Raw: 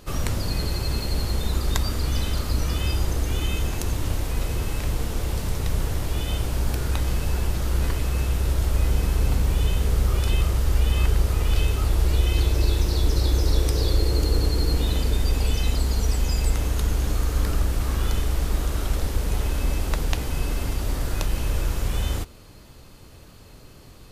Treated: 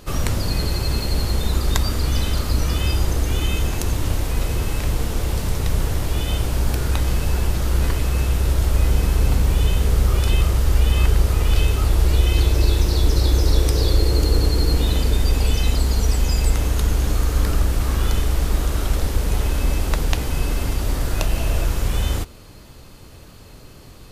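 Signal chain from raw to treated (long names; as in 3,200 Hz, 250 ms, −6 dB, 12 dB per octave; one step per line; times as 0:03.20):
0:21.18–0:21.65: hollow resonant body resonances 670/2,700 Hz, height 10 dB
level +4 dB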